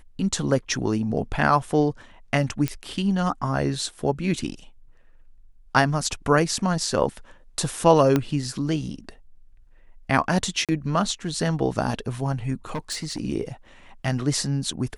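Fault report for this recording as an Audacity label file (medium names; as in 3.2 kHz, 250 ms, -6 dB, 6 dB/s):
2.680000	2.680000	pop -10 dBFS
8.160000	8.160000	pop -8 dBFS
10.650000	10.690000	dropout 37 ms
12.750000	13.200000	clipped -24 dBFS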